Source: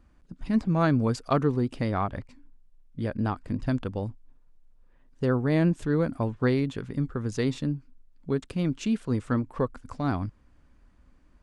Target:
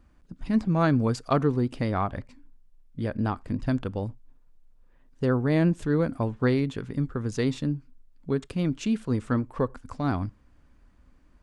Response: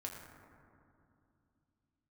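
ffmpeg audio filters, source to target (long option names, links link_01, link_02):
-filter_complex "[0:a]asplit=2[link_01][link_02];[1:a]atrim=start_sample=2205,atrim=end_sample=3969,asetrate=42336,aresample=44100[link_03];[link_02][link_03]afir=irnorm=-1:irlink=0,volume=-17dB[link_04];[link_01][link_04]amix=inputs=2:normalize=0"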